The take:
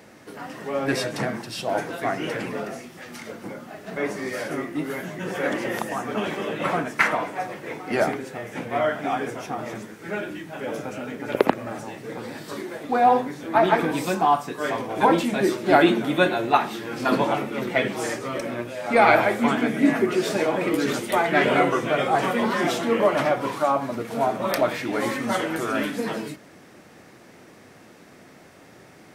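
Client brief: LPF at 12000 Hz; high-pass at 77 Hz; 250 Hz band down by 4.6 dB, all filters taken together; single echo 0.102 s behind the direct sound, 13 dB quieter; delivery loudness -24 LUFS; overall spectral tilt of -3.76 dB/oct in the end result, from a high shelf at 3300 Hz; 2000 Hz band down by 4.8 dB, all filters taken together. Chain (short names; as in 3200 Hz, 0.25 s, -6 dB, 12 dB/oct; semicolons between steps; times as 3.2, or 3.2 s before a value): HPF 77 Hz; LPF 12000 Hz; bell 250 Hz -6 dB; bell 2000 Hz -8.5 dB; high shelf 3300 Hz +7.5 dB; echo 0.102 s -13 dB; gain +1.5 dB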